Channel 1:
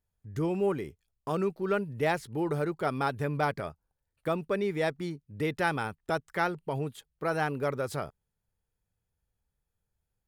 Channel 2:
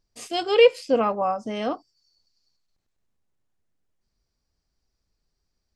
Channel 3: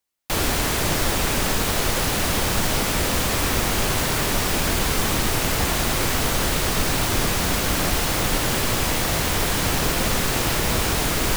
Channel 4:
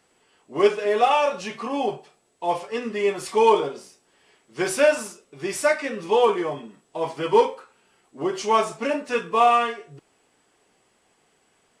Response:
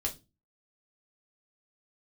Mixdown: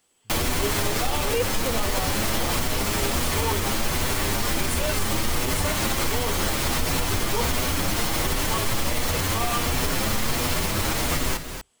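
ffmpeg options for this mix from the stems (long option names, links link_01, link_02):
-filter_complex "[0:a]volume=-13.5dB[link_01];[1:a]adelay=750,volume=-4dB[link_02];[2:a]alimiter=limit=-13dB:level=0:latency=1:release=66,asplit=2[link_03][link_04];[link_04]adelay=7.3,afreqshift=1.4[link_05];[link_03][link_05]amix=inputs=2:normalize=1,volume=2.5dB,asplit=3[link_06][link_07][link_08];[link_07]volume=-8dB[link_09];[link_08]volume=-10dB[link_10];[3:a]aexciter=amount=2.4:drive=4.3:freq=2800,volume=-10dB,asplit=2[link_11][link_12];[link_12]volume=-11dB[link_13];[4:a]atrim=start_sample=2205[link_14];[link_09][link_13]amix=inputs=2:normalize=0[link_15];[link_15][link_14]afir=irnorm=-1:irlink=0[link_16];[link_10]aecho=0:1:243:1[link_17];[link_01][link_02][link_06][link_11][link_16][link_17]amix=inputs=6:normalize=0,alimiter=limit=-13.5dB:level=0:latency=1:release=182"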